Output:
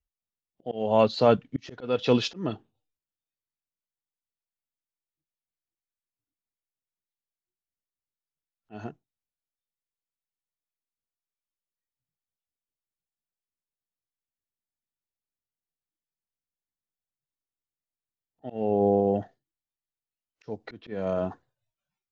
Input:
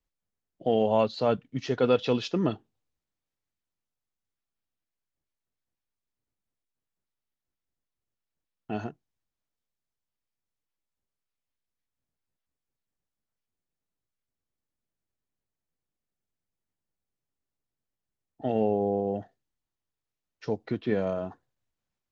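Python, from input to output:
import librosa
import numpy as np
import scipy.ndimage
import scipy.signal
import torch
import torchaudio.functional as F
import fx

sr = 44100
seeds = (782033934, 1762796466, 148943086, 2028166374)

y = fx.noise_reduce_blind(x, sr, reduce_db=17)
y = fx.auto_swell(y, sr, attack_ms=359.0)
y = y * librosa.db_to_amplitude(5.5)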